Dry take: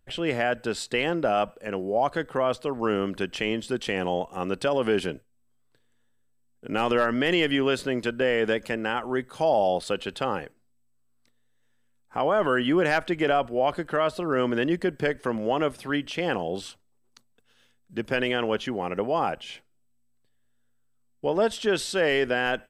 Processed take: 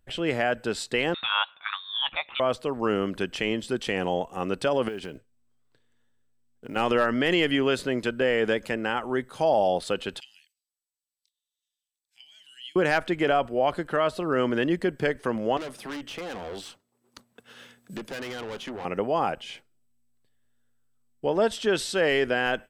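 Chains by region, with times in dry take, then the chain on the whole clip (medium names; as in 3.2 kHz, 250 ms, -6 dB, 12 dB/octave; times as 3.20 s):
1.14–2.40 s: high-pass 1.3 kHz 6 dB/octave + peaking EQ 2.8 kHz +14 dB 0.96 oct + frequency inversion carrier 4 kHz
4.88–6.76 s: low-pass 7.8 kHz + compression 3:1, threshold -34 dBFS + short-mantissa float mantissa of 4-bit
10.20–12.76 s: inverse Chebyshev high-pass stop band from 1.3 kHz, stop band 50 dB + treble shelf 6.5 kHz -7 dB
15.57–18.85 s: high-pass 140 Hz + valve stage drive 32 dB, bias 0.45 + three bands compressed up and down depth 70%
whole clip: none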